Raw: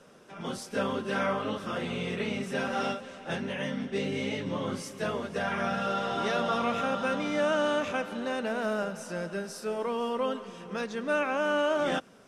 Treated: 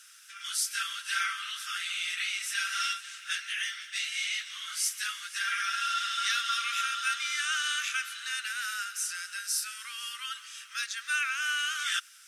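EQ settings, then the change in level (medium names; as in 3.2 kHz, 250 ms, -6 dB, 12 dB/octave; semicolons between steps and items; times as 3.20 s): steep high-pass 1.3 kHz 72 dB/octave; treble shelf 2.5 kHz +10.5 dB; treble shelf 6.8 kHz +9 dB; 0.0 dB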